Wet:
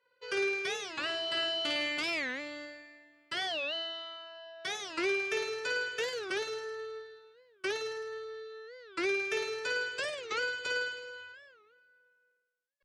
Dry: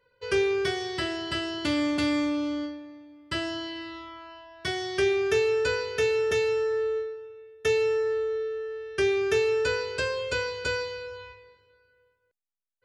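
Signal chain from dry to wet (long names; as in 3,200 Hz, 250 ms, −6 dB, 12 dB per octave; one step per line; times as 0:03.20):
meter weighting curve A
on a send: flutter between parallel walls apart 9.1 metres, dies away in 1.1 s
on the sum: wow of a warped record 45 rpm, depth 250 cents
level −6.5 dB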